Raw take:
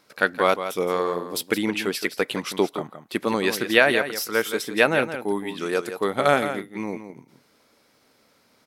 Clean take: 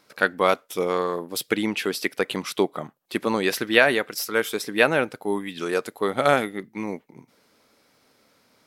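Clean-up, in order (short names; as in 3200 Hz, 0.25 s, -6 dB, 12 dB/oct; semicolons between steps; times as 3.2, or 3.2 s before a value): inverse comb 0.169 s -10 dB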